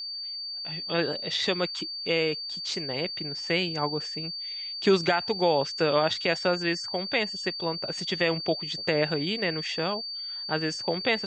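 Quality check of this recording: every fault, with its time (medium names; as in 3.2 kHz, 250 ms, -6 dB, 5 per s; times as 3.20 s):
whine 4.6 kHz -33 dBFS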